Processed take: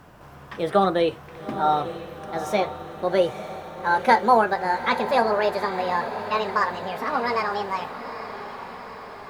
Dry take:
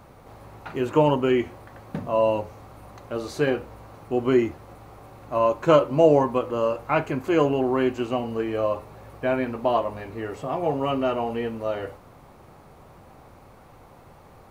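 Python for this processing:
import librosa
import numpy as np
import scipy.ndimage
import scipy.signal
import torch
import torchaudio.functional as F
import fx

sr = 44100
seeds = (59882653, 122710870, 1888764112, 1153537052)

y = fx.speed_glide(x, sr, from_pct=126, to_pct=186)
y = fx.echo_diffused(y, sr, ms=881, feedback_pct=59, wet_db=-11.0)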